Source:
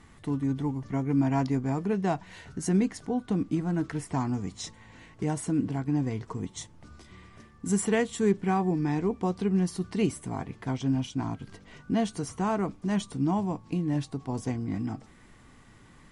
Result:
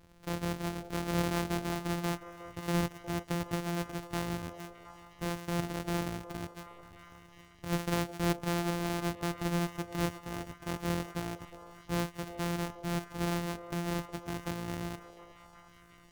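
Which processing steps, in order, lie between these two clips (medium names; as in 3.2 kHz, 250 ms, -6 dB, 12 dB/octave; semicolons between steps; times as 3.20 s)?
sorted samples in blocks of 256 samples; repeats whose band climbs or falls 361 ms, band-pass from 570 Hz, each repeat 0.7 oct, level -8 dB; trim -6.5 dB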